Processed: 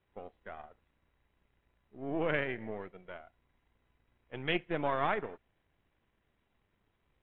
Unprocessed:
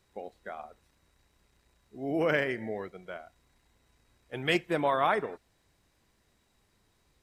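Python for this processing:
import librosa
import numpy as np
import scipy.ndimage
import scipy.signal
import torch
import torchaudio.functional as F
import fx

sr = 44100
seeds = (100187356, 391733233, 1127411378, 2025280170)

y = np.where(x < 0.0, 10.0 ** (-7.0 / 20.0) * x, x)
y = scipy.signal.sosfilt(scipy.signal.butter(12, 3500.0, 'lowpass', fs=sr, output='sos'), y)
y = y * 10.0 ** (-3.0 / 20.0)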